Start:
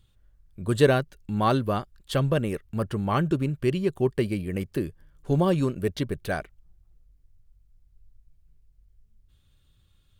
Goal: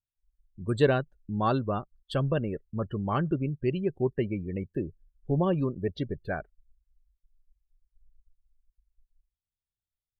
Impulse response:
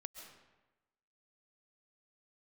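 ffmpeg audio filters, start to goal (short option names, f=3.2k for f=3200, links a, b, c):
-af "afftdn=nr=32:nf=-35,volume=-3.5dB"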